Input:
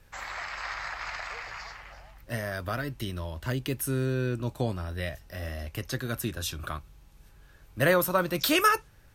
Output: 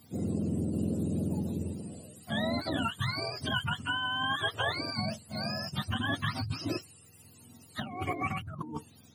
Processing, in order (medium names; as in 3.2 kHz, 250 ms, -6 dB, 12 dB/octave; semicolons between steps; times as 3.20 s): spectrum inverted on a logarithmic axis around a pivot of 630 Hz; compressor with a negative ratio -33 dBFS, ratio -1; dynamic bell 1.5 kHz, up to +5 dB, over -50 dBFS, Q 2